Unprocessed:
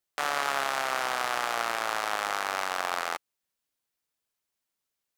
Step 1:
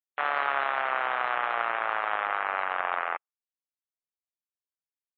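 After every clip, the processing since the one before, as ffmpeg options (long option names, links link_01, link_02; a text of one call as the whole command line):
ffmpeg -i in.wav -af "lowpass=2300,afftdn=noise_reduction=27:noise_floor=-45,equalizer=frequency=190:width_type=o:width=2.6:gain=-11,volume=4dB" out.wav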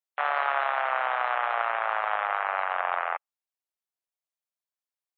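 ffmpeg -i in.wav -af "highpass=frequency=630:width_type=q:width=1.5,volume=-1dB" out.wav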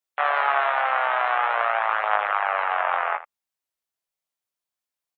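ffmpeg -i in.wav -af "aecho=1:1:19|79:0.531|0.188,volume=3.5dB" out.wav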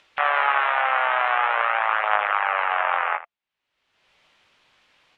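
ffmpeg -i in.wav -af "acompressor=mode=upward:threshold=-32dB:ratio=2.5,lowpass=frequency=2900:width_type=q:width=1.6,bandreject=frequency=690:width=21" out.wav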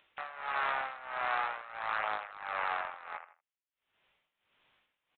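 ffmpeg -i in.wav -filter_complex "[0:a]asplit=2[link_01][link_02];[link_02]adelay=160,highpass=300,lowpass=3400,asoftclip=type=hard:threshold=-12dB,volume=-27dB[link_03];[link_01][link_03]amix=inputs=2:normalize=0,aresample=8000,asoftclip=type=tanh:threshold=-12.5dB,aresample=44100,tremolo=f=1.5:d=0.86,volume=-8.5dB" out.wav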